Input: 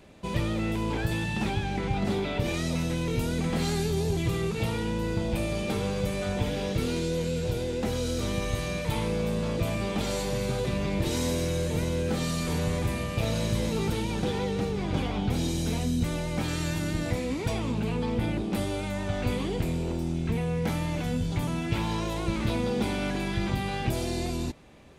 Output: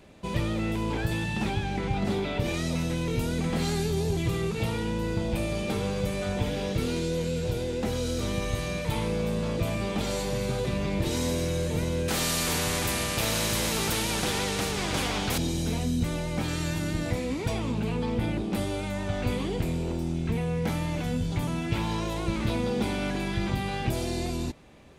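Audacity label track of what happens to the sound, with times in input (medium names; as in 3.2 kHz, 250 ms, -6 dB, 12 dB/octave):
12.080000	15.380000	spectrum-flattening compressor 2:1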